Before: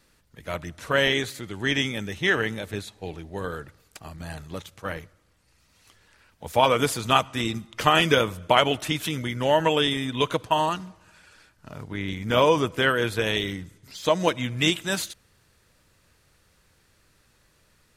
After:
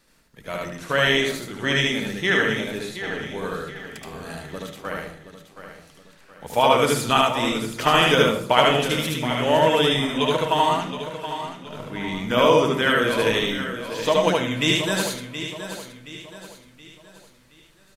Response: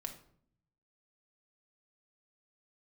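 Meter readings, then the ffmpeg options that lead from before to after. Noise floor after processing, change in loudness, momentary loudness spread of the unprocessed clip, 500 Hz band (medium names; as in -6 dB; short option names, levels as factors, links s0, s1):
-54 dBFS, +3.0 dB, 17 LU, +4.0 dB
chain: -filter_complex "[0:a]equalizer=f=90:w=2.3:g=-11.5,aecho=1:1:723|1446|2169|2892:0.282|0.116|0.0474|0.0194,asplit=2[s0][s1];[1:a]atrim=start_sample=2205,adelay=74[s2];[s1][s2]afir=irnorm=-1:irlink=0,volume=1.33[s3];[s0][s3]amix=inputs=2:normalize=0"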